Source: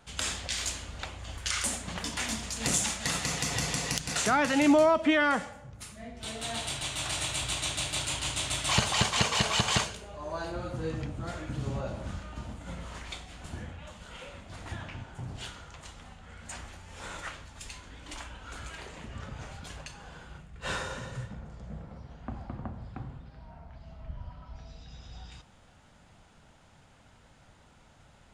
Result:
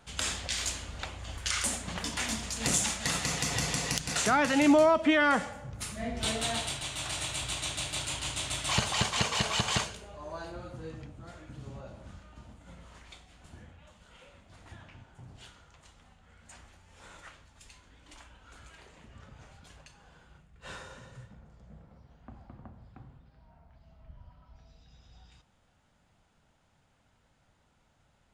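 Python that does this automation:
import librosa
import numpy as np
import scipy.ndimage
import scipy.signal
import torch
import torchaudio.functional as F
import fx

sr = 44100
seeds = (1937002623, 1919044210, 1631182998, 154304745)

y = fx.gain(x, sr, db=fx.line((5.17, 0.0), (6.18, 9.5), (6.81, -2.5), (10.05, -2.5), (11.16, -10.5)))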